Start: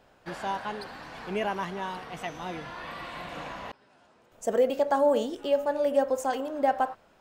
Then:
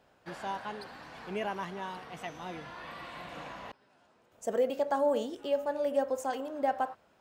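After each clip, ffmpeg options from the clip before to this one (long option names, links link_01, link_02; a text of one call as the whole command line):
ffmpeg -i in.wav -af "highpass=49,volume=-5dB" out.wav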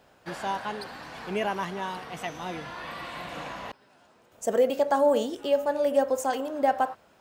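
ffmpeg -i in.wav -af "highshelf=frequency=5400:gain=4.5,volume=6dB" out.wav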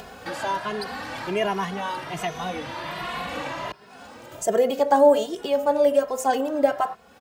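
ffmpeg -i in.wav -filter_complex "[0:a]asplit=2[link_01][link_02];[link_02]acompressor=mode=upward:threshold=-26dB:ratio=2.5,volume=1.5dB[link_03];[link_01][link_03]amix=inputs=2:normalize=0,asplit=2[link_04][link_05];[link_05]adelay=2.4,afreqshift=1.3[link_06];[link_04][link_06]amix=inputs=2:normalize=1" out.wav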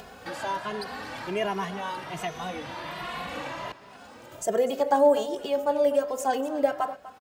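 ffmpeg -i in.wav -af "aecho=1:1:247:0.158,volume=-4dB" out.wav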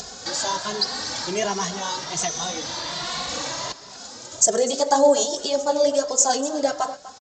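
ffmpeg -i in.wav -af "flanger=delay=0.1:depth=9:regen=-39:speed=1.8:shape=triangular,aexciter=amount=9.3:drive=5.9:freq=4000,aresample=16000,aresample=44100,volume=7dB" out.wav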